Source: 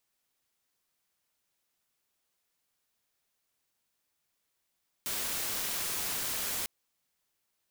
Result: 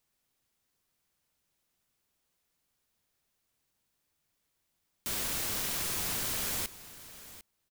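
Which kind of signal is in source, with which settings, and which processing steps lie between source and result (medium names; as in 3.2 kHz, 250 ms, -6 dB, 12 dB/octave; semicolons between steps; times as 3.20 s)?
noise white, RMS -34 dBFS 1.60 s
bass shelf 270 Hz +9 dB; delay 749 ms -16 dB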